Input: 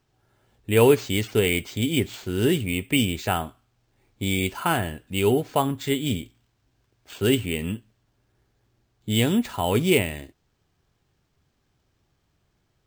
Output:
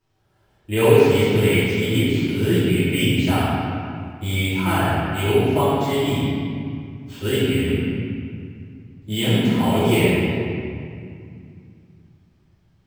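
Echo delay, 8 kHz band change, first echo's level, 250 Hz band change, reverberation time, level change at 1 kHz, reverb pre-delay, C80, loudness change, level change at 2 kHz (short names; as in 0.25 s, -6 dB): none, -1.0 dB, none, +5.0 dB, 2.3 s, +4.0 dB, 3 ms, -2.0 dB, +3.5 dB, +4.0 dB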